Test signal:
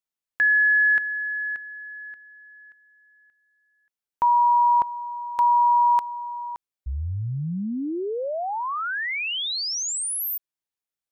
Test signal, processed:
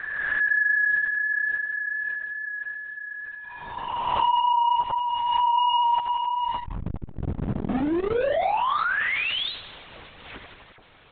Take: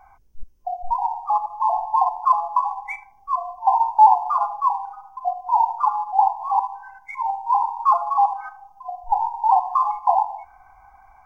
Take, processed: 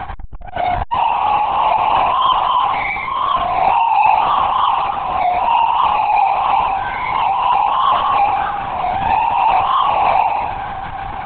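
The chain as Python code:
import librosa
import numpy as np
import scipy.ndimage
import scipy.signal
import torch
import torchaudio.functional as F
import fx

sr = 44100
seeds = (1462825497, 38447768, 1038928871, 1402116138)

y = fx.spec_swells(x, sr, rise_s=0.7)
y = fx.echo_feedback(y, sr, ms=86, feedback_pct=46, wet_db=-10.5)
y = fx.power_curve(y, sr, exponent=0.35)
y = fx.high_shelf(y, sr, hz=2200.0, db=-7.5)
y = fx.lpc_vocoder(y, sr, seeds[0], excitation='whisper', order=16)
y = fx.transformer_sat(y, sr, knee_hz=260.0)
y = F.gain(torch.from_numpy(y), -5.0).numpy()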